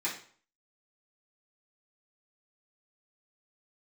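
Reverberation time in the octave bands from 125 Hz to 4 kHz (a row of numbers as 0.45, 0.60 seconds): 0.50, 0.45, 0.45, 0.50, 0.45, 0.40 seconds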